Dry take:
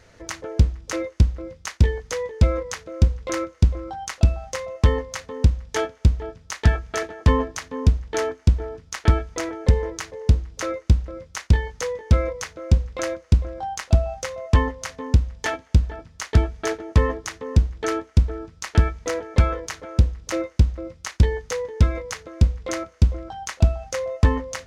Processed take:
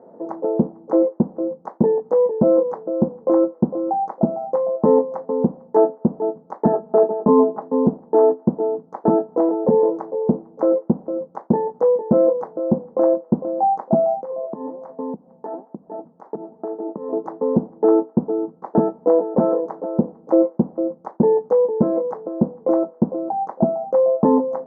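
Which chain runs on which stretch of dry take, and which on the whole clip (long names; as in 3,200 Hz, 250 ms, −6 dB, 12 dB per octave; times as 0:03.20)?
0:06.73–0:07.62: low-pass filter 1,700 Hz + comb filter 4.8 ms, depth 68%
0:14.21–0:17.13: flanger 1.2 Hz, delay 0.2 ms, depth 7.7 ms, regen +87% + downward compressor 16 to 1, threshold −33 dBFS
0:17.83–0:18.65: low-pass filter 2,400 Hz + notch filter 620 Hz, Q 10
whole clip: elliptic band-pass filter 200–870 Hz, stop band 50 dB; boost into a limiter +16.5 dB; level −4 dB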